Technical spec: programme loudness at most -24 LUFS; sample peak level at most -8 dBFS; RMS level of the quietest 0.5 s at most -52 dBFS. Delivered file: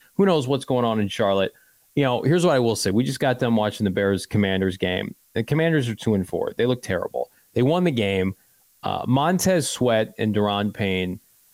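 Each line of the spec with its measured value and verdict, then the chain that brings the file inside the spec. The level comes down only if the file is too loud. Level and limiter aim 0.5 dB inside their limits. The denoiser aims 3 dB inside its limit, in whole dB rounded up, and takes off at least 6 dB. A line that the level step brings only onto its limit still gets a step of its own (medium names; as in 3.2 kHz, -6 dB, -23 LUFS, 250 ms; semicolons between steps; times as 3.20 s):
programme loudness -22.5 LUFS: fail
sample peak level -9.0 dBFS: pass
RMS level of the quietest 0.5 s -58 dBFS: pass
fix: trim -2 dB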